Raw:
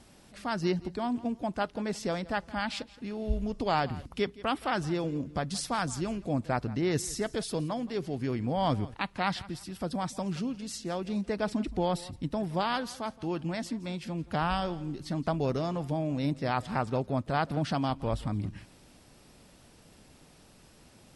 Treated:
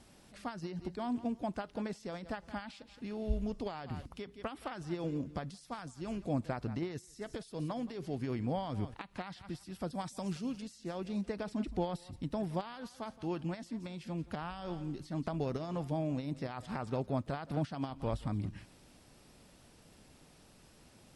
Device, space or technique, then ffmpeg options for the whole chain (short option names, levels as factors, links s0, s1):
de-esser from a sidechain: -filter_complex "[0:a]asplit=2[s0][s1];[s1]highpass=4300,apad=whole_len=933042[s2];[s0][s2]sidechaincompress=threshold=0.00282:ratio=16:attack=4.2:release=88,asettb=1/sr,asplit=3[s3][s4][s5];[s3]atrim=end=9.934[s6];[s4]atrim=start=9.93:end=10.62,asetpts=PTS-STARTPTS,afade=t=in:d=0.004:c=qsin,afade=t=out:st=0.686:d=0.004:c=qsin,highshelf=f=4800:g=9.5[s7];[s5]atrim=start=10.616[s8];[s6][s7]acrossfade=d=0.004:c1=hsin:c2=qsin[s9];[s9][s8]acrossfade=d=0.004:c1=qsin:c2=hsin,volume=0.668"